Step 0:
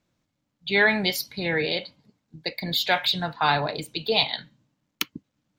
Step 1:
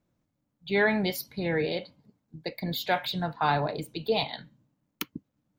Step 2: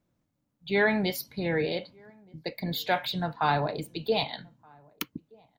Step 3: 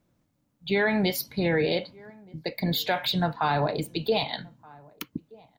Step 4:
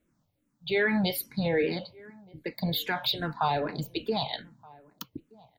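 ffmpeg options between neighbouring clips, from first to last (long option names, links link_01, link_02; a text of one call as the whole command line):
ffmpeg -i in.wav -af "equalizer=frequency=4000:width=0.36:gain=-10" out.wav
ffmpeg -i in.wav -filter_complex "[0:a]asplit=2[link_01][link_02];[link_02]adelay=1224,volume=-28dB,highshelf=frequency=4000:gain=-27.6[link_03];[link_01][link_03]amix=inputs=2:normalize=0" out.wav
ffmpeg -i in.wav -af "alimiter=limit=-21dB:level=0:latency=1:release=133,volume=5.5dB" out.wav
ffmpeg -i in.wav -filter_complex "[0:a]asplit=2[link_01][link_02];[link_02]afreqshift=-2.5[link_03];[link_01][link_03]amix=inputs=2:normalize=1" out.wav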